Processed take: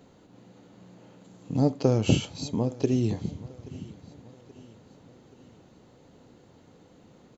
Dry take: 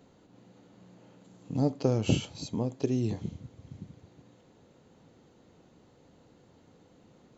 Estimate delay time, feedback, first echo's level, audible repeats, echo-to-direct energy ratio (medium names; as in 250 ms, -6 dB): 828 ms, 49%, -21.0 dB, 3, -20.0 dB